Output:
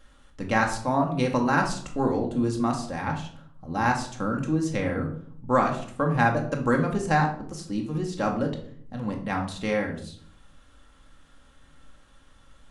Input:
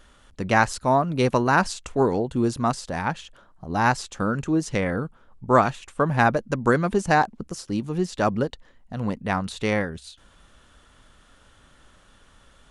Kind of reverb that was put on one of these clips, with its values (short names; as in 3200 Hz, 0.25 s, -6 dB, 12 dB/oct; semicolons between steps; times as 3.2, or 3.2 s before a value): shoebox room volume 790 m³, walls furnished, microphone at 2.2 m; gain -6 dB